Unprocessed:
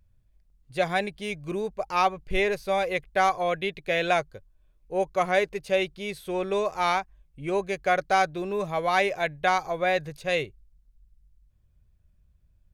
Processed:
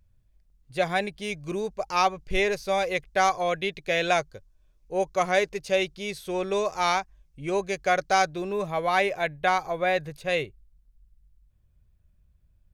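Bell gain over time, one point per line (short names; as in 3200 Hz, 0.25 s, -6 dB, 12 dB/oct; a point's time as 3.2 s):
bell 5800 Hz 0.9 oct
0.99 s +1.5 dB
1.44 s +7.5 dB
8.24 s +7.5 dB
8.72 s -2 dB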